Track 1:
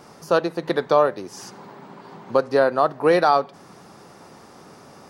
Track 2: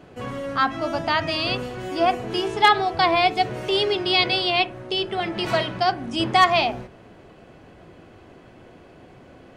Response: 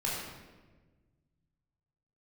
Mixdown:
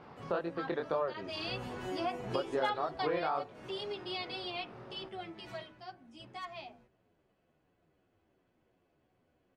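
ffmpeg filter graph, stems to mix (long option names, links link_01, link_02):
-filter_complex "[0:a]lowpass=frequency=3400:width=0.5412,lowpass=frequency=3400:width=1.3066,flanger=delay=18:depth=7.5:speed=2,volume=-3dB[link_01];[1:a]asplit=2[link_02][link_03];[link_03]adelay=9.6,afreqshift=-2.8[link_04];[link_02][link_04]amix=inputs=2:normalize=1,volume=-4.5dB,afade=type=in:start_time=1.25:duration=0.61:silence=0.334965,afade=type=out:start_time=2.72:duration=0.71:silence=0.298538,afade=type=out:start_time=5.06:duration=0.76:silence=0.354813[link_05];[link_01][link_05]amix=inputs=2:normalize=0,acompressor=threshold=-35dB:ratio=2.5"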